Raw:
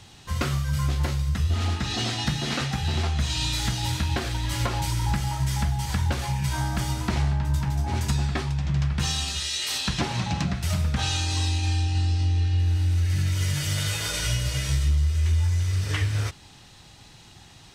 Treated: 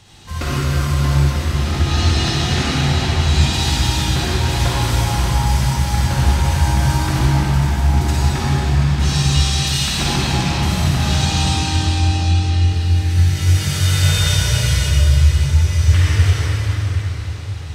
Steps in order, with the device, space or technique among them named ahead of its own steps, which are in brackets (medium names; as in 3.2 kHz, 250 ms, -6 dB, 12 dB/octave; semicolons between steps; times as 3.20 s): cathedral (reverberation RT60 5.1 s, pre-delay 44 ms, DRR -8.5 dB)